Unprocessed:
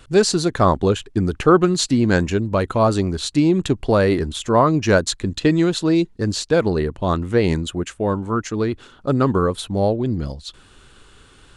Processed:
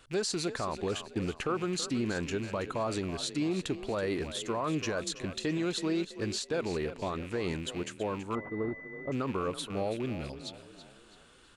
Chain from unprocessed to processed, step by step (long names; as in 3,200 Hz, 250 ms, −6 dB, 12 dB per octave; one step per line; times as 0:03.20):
loose part that buzzes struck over −28 dBFS, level −27 dBFS
low-shelf EQ 240 Hz −9 dB
brickwall limiter −15 dBFS, peak gain reduction 11.5 dB
echo with shifted repeats 328 ms, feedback 44%, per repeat +31 Hz, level −13 dB
0:08.35–0:09.12: switching amplifier with a slow clock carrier 2,000 Hz
level −8.5 dB